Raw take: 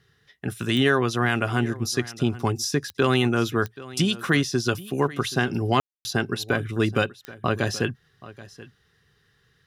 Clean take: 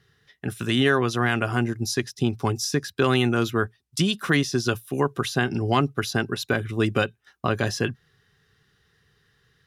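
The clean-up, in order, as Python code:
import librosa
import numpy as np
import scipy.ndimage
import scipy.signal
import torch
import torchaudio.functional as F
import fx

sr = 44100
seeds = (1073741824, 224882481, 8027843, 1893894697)

y = fx.fix_declick_ar(x, sr, threshold=10.0)
y = fx.fix_ambience(y, sr, seeds[0], print_start_s=8.75, print_end_s=9.25, start_s=5.8, end_s=6.05)
y = fx.fix_echo_inverse(y, sr, delay_ms=779, level_db=-18.5)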